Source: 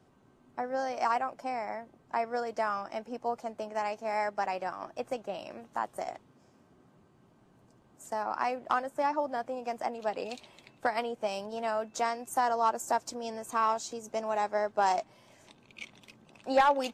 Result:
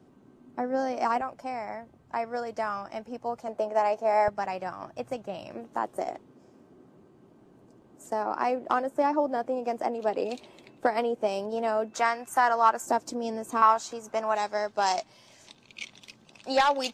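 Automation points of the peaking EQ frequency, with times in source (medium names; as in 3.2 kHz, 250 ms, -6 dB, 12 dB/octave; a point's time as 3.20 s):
peaking EQ +10 dB 1.7 oct
270 Hz
from 1.21 s 77 Hz
from 3.48 s 590 Hz
from 4.28 s 110 Hz
from 5.55 s 350 Hz
from 11.93 s 1.6 kHz
from 12.86 s 290 Hz
from 13.62 s 1.3 kHz
from 14.35 s 4.9 kHz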